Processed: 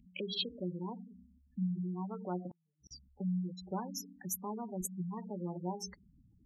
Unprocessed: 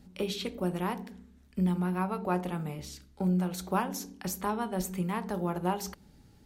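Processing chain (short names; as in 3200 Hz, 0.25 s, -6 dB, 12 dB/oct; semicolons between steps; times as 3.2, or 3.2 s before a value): spectral gate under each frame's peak -10 dB strong; resonant high shelf 1800 Hz +9.5 dB, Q 3; 2.5–2.91 flipped gate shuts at -35 dBFS, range -39 dB; gain -6.5 dB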